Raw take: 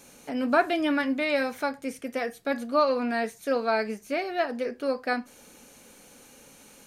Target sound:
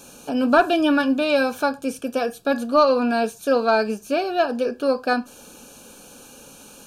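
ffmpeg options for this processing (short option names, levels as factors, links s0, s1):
-af "asoftclip=type=tanh:threshold=0.237,asuperstop=centerf=2000:order=8:qfactor=3.2,volume=2.37"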